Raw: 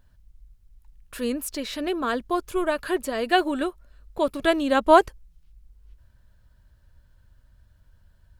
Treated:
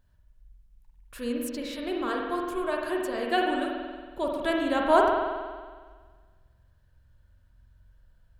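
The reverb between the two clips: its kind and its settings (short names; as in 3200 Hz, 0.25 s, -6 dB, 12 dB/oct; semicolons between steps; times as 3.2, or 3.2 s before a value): spring tank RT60 1.6 s, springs 46 ms, chirp 55 ms, DRR -0.5 dB; gain -7 dB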